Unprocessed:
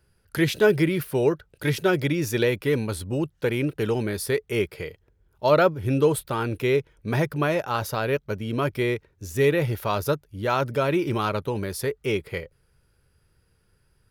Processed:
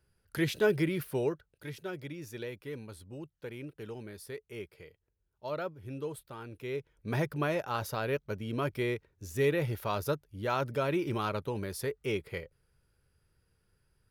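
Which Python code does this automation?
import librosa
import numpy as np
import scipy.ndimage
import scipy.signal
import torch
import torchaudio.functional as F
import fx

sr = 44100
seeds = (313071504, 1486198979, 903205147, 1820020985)

y = fx.gain(x, sr, db=fx.line((1.17, -8.0), (1.68, -18.0), (6.55, -18.0), (7.12, -7.5)))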